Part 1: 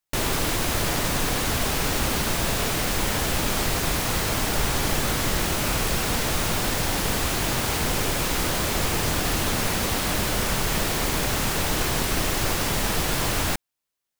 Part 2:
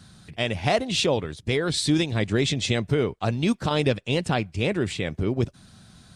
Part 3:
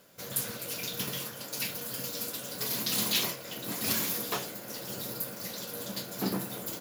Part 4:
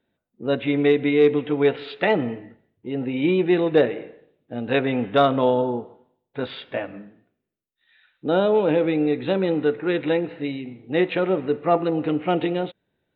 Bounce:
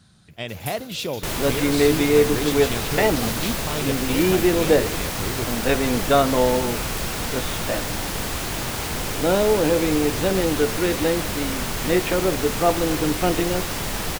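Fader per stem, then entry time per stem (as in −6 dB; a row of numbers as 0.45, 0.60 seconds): −2.5, −5.5, −4.5, 0.0 decibels; 1.10, 0.00, 0.30, 0.95 seconds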